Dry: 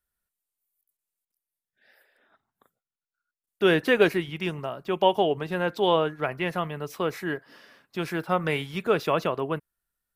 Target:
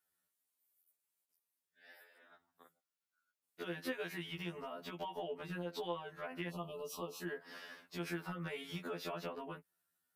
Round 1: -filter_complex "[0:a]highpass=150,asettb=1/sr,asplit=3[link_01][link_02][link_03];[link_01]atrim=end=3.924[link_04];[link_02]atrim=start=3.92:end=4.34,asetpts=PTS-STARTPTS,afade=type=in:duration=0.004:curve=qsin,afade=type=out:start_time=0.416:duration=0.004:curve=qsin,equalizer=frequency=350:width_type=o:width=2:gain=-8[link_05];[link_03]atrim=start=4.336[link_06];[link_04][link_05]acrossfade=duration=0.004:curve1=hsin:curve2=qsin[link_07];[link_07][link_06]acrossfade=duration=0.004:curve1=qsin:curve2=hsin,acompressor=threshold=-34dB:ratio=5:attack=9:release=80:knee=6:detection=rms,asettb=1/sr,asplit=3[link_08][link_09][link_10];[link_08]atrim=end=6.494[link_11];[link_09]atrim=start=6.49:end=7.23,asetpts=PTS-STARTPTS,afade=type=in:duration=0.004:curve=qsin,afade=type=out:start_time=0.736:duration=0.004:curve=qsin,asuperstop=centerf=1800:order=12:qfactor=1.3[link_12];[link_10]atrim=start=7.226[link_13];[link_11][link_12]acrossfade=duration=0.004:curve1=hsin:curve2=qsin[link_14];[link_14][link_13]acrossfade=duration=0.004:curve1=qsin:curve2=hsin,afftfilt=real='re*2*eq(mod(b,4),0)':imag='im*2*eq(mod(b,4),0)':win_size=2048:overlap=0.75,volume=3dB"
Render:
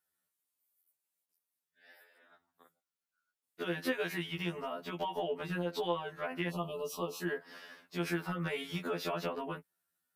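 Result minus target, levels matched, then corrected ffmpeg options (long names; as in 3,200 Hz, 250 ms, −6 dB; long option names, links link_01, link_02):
downward compressor: peak gain reduction −7 dB
-filter_complex "[0:a]highpass=150,asettb=1/sr,asplit=3[link_01][link_02][link_03];[link_01]atrim=end=3.924[link_04];[link_02]atrim=start=3.92:end=4.34,asetpts=PTS-STARTPTS,afade=type=in:duration=0.004:curve=qsin,afade=type=out:start_time=0.416:duration=0.004:curve=qsin,equalizer=frequency=350:width_type=o:width=2:gain=-8[link_05];[link_03]atrim=start=4.336[link_06];[link_04][link_05]acrossfade=duration=0.004:curve1=hsin:curve2=qsin[link_07];[link_07][link_06]acrossfade=duration=0.004:curve1=qsin:curve2=hsin,acompressor=threshold=-42.5dB:ratio=5:attack=9:release=80:knee=6:detection=rms,asettb=1/sr,asplit=3[link_08][link_09][link_10];[link_08]atrim=end=6.494[link_11];[link_09]atrim=start=6.49:end=7.23,asetpts=PTS-STARTPTS,afade=type=in:duration=0.004:curve=qsin,afade=type=out:start_time=0.736:duration=0.004:curve=qsin,asuperstop=centerf=1800:order=12:qfactor=1.3[link_12];[link_10]atrim=start=7.226[link_13];[link_11][link_12]acrossfade=duration=0.004:curve1=hsin:curve2=qsin[link_14];[link_14][link_13]acrossfade=duration=0.004:curve1=qsin:curve2=hsin,afftfilt=real='re*2*eq(mod(b,4),0)':imag='im*2*eq(mod(b,4),0)':win_size=2048:overlap=0.75,volume=3dB"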